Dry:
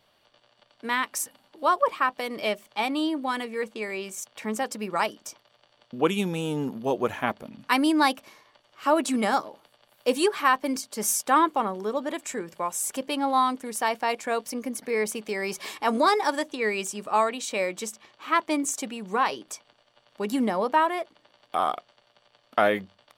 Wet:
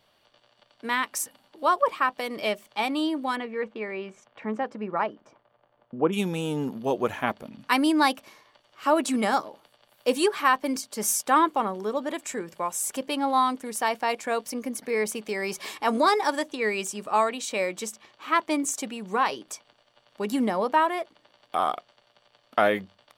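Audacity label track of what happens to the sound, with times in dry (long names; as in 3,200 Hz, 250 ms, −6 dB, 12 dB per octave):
3.350000	6.120000	low-pass filter 2,700 Hz → 1,100 Hz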